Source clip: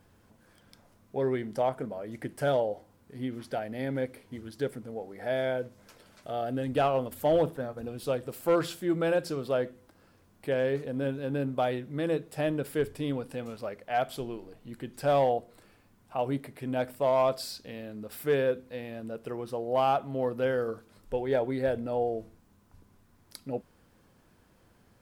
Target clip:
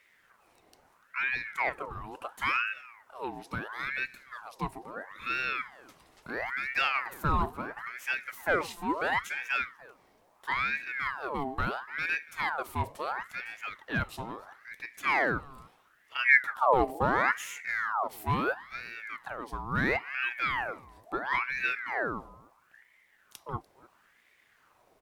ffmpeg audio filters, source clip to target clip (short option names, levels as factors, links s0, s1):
-filter_complex "[0:a]asplit=3[s0][s1][s2];[s0]afade=t=out:st=16.24:d=0.02[s3];[s1]asubboost=boost=10:cutoff=230,afade=t=in:st=16.24:d=0.02,afade=t=out:st=18.08:d=0.02[s4];[s2]afade=t=in:st=18.08:d=0.02[s5];[s3][s4][s5]amix=inputs=3:normalize=0,aecho=1:1:293:0.0794,aeval=exprs='val(0)*sin(2*PI*1300*n/s+1300*0.6/0.74*sin(2*PI*0.74*n/s))':c=same"